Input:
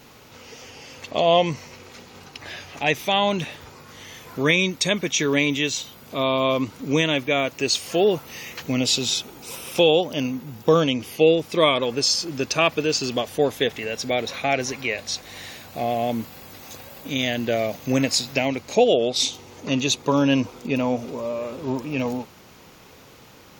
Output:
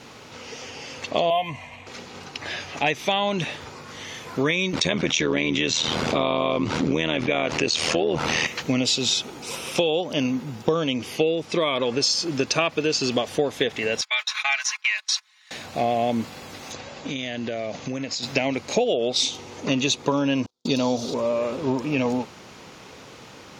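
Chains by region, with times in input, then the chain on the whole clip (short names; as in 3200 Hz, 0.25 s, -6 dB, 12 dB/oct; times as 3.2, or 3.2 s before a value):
1.3–1.87 fixed phaser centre 1400 Hz, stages 6 + comb 2.9 ms, depth 51% + decimation joined by straight lines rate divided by 3×
4.73–8.47 air absorption 68 m + AM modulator 80 Hz, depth 70% + fast leveller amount 70%
11.45–12.04 compressor 2:1, threshold -22 dBFS + LPF 8900 Hz
14.01–15.51 steep high-pass 1000 Hz + gate -36 dBFS, range -24 dB + comb 4.7 ms, depth 70%
16.72–18.23 steep low-pass 7300 Hz 72 dB/oct + compressor 12:1, threshold -29 dBFS
20.46–21.14 gate -36 dBFS, range -48 dB + resonant high shelf 3100 Hz +9 dB, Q 3
whole clip: LPF 7800 Hz 12 dB/oct; low shelf 63 Hz -11.5 dB; compressor 10:1, threshold -23 dBFS; gain +5 dB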